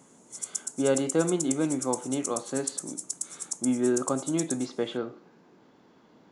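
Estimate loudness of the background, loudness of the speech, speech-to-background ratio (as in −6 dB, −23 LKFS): −34.5 LKFS, −29.0 LKFS, 5.5 dB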